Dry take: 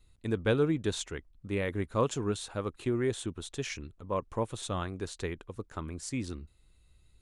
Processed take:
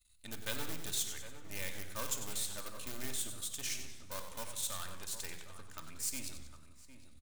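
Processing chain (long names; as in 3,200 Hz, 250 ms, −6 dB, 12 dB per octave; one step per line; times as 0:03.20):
gain on one half-wave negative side −12 dB
parametric band 350 Hz −9 dB 0.56 octaves
in parallel at −10 dB: wrap-around overflow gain 29 dB
on the sum: first-order pre-emphasis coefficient 0.9
slap from a distant wall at 130 metres, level −11 dB
on a send at −6 dB: convolution reverb RT60 0.95 s, pre-delay 3 ms
on the sum: feedback echo with a swinging delay time 94 ms, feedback 49%, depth 142 cents, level −10 dB
level +5.5 dB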